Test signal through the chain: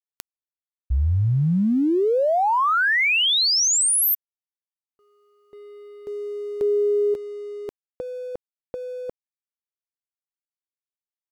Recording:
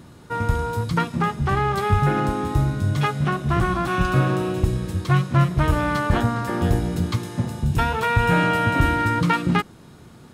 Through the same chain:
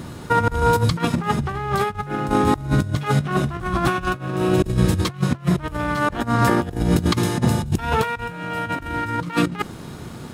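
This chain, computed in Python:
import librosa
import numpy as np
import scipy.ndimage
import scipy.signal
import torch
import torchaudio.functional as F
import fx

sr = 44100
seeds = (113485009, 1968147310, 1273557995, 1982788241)

y = fx.over_compress(x, sr, threshold_db=-26.0, ratio=-0.5)
y = np.sign(y) * np.maximum(np.abs(y) - 10.0 ** (-56.5 / 20.0), 0.0)
y = F.gain(torch.from_numpy(y), 6.0).numpy()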